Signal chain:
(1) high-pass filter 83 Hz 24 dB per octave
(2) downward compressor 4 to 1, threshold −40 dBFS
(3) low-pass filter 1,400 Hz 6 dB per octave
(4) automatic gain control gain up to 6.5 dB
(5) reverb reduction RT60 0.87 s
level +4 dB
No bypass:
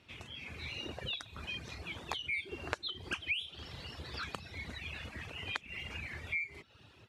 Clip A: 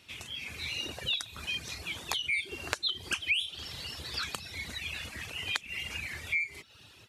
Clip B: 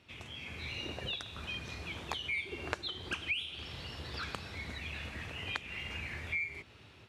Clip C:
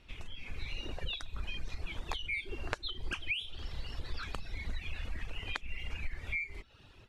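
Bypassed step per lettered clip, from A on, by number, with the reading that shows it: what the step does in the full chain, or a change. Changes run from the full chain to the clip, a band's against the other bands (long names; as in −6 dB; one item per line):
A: 3, 8 kHz band +12.5 dB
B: 5, change in momentary loudness spread −2 LU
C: 1, 125 Hz band +4.0 dB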